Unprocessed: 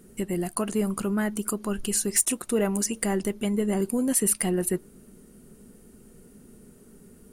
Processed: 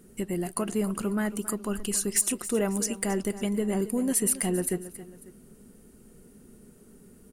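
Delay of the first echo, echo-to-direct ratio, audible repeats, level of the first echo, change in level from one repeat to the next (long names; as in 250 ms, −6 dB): 273 ms, −13.5 dB, 2, −14.5 dB, −7.0 dB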